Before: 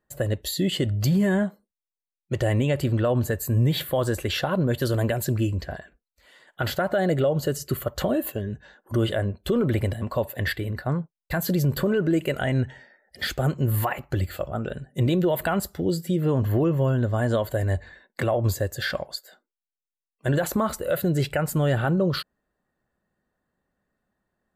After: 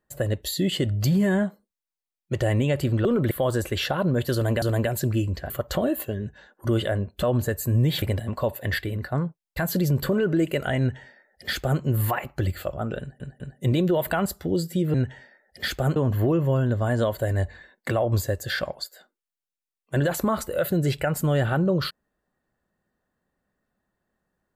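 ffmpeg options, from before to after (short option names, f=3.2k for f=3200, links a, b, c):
-filter_complex "[0:a]asplit=11[a][b][c][d][e][f][g][h][i][j][k];[a]atrim=end=3.052[l];[b]atrim=start=9.498:end=9.762[m];[c]atrim=start=3.838:end=5.152[n];[d]atrim=start=4.868:end=5.752[o];[e]atrim=start=7.768:end=9.502[p];[f]atrim=start=3.048:end=3.842[q];[g]atrim=start=9.758:end=14.942[r];[h]atrim=start=14.738:end=14.942[s];[i]atrim=start=14.738:end=16.282[t];[j]atrim=start=12.528:end=13.552[u];[k]atrim=start=16.278[v];[l][m]acrossfade=d=0.004:c1=hsin:c2=hsin[w];[w][n]acrossfade=d=0.004:c1=hsin:c2=hsin[x];[x][o]acrossfade=d=0.004:c1=hsin:c2=hsin[y];[y][p]acrossfade=d=0.004:c1=hsin:c2=hsin[z];[z][q]acrossfade=d=0.004:c1=hsin:c2=hsin[aa];[aa][r]acrossfade=d=0.004:c1=hsin:c2=hsin[ab];[ab][s]acrossfade=d=0.004:c1=hsin:c2=hsin[ac];[ac][t]acrossfade=d=0.004:c1=hsin:c2=hsin[ad];[ad][u]acrossfade=d=0.004:c1=hsin:c2=hsin[ae];[ae][v]acrossfade=d=0.004:c1=hsin:c2=hsin"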